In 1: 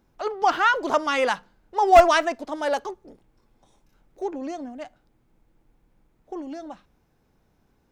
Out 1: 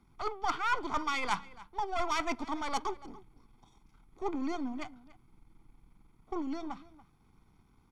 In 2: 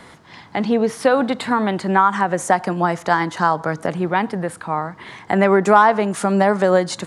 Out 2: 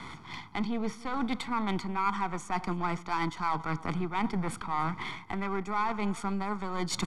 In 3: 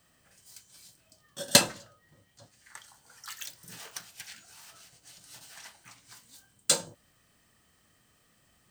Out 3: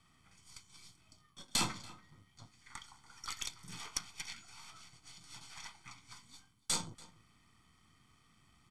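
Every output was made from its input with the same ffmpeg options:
-filter_complex "[0:a]aeval=exprs='if(lt(val(0),0),0.447*val(0),val(0))':c=same,highshelf=f=3800:g=10.5,areverse,acompressor=threshold=0.0398:ratio=12,areverse,aecho=1:1:0.9:0.77,acrossover=split=410[s0][s1];[s1]adynamicsmooth=sensitivity=3:basefreq=3800[s2];[s0][s2]amix=inputs=2:normalize=0,asplit=2[s3][s4];[s4]adelay=285.7,volume=0.112,highshelf=f=4000:g=-6.43[s5];[s3][s5]amix=inputs=2:normalize=0" -ar 44100 -c:a mp2 -b:a 192k

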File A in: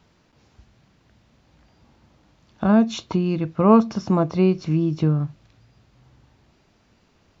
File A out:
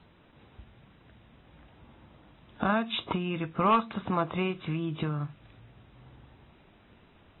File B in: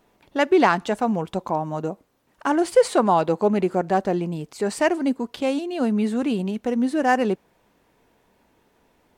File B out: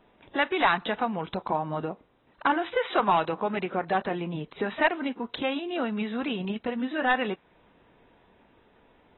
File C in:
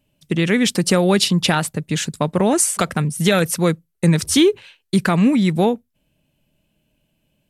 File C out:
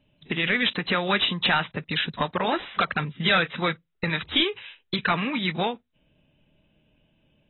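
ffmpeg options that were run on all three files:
-filter_complex "[0:a]acrossover=split=910[s0][s1];[s0]acompressor=threshold=0.0251:ratio=5[s2];[s2][s1]amix=inputs=2:normalize=0,volume=7.08,asoftclip=hard,volume=0.141,volume=1.19" -ar 24000 -c:a aac -b:a 16k

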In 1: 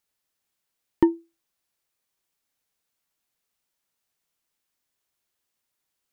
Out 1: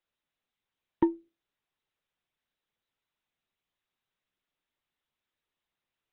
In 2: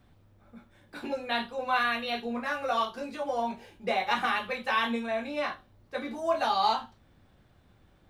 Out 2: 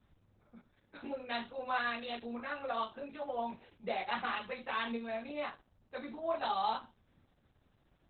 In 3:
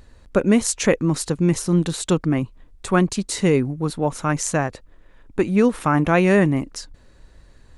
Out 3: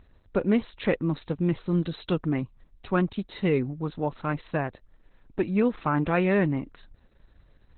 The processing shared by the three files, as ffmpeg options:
-af "volume=0.473" -ar 48000 -c:a libopus -b:a 8k

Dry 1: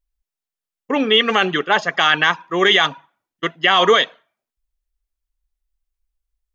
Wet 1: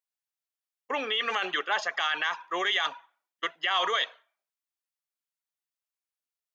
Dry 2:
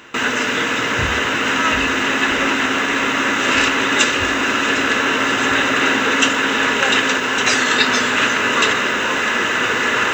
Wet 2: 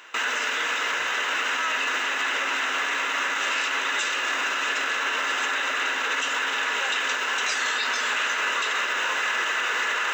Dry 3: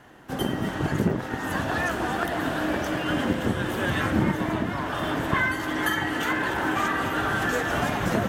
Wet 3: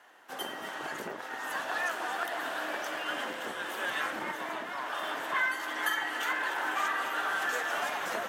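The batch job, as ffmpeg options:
-af "alimiter=limit=0.251:level=0:latency=1:release=25,highpass=680,volume=0.631"

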